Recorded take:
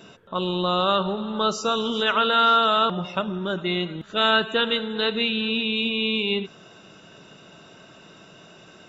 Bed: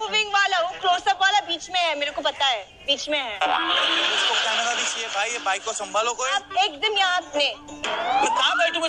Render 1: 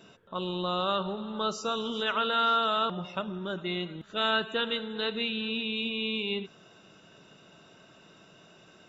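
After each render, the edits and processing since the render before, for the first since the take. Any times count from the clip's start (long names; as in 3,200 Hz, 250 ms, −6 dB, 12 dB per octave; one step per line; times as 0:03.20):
level −7.5 dB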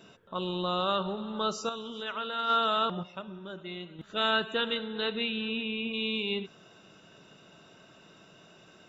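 0:01.69–0:02.50: noise gate −25 dBFS, range −7 dB
0:03.03–0:03.99: tuned comb filter 190 Hz, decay 1.6 s
0:04.74–0:05.92: low-pass filter 5,500 Hz → 2,700 Hz 24 dB per octave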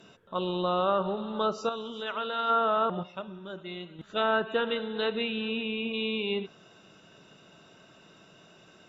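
treble cut that deepens with the level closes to 1,800 Hz, closed at −24 dBFS
dynamic equaliser 600 Hz, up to +5 dB, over −43 dBFS, Q 0.77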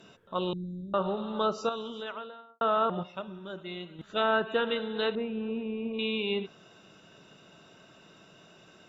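0:00.53–0:00.94: inverse Chebyshev band-stop filter 800–2,600 Hz, stop band 70 dB
0:01.82–0:02.61: fade out and dull
0:05.15–0:05.99: low-pass filter 1,100 Hz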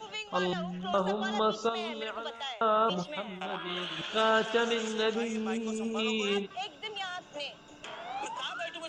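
mix in bed −17 dB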